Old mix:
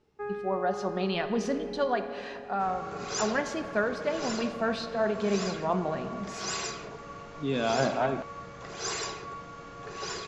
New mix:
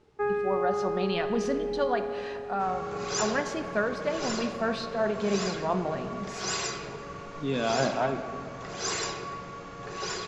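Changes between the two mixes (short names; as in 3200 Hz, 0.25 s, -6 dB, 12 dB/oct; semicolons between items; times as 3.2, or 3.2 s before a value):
first sound +8.0 dB; second sound: send on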